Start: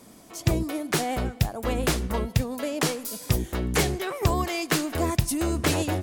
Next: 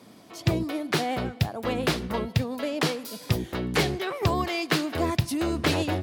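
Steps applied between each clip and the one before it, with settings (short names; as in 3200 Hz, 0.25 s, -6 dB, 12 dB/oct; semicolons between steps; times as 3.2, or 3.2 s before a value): HPF 82 Hz 24 dB/oct; resonant high shelf 5600 Hz -7 dB, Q 1.5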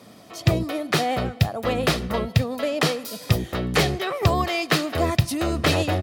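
comb 1.6 ms, depth 31%; gain +4 dB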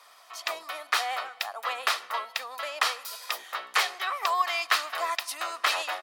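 ladder high-pass 860 Hz, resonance 40%; gain +5 dB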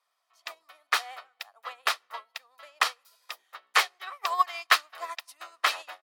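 upward expander 2.5:1, over -39 dBFS; gain +5.5 dB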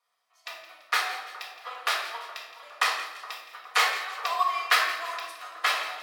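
split-band echo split 1400 Hz, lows 0.418 s, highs 0.168 s, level -14.5 dB; shoebox room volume 400 m³, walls mixed, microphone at 1.8 m; gain -3 dB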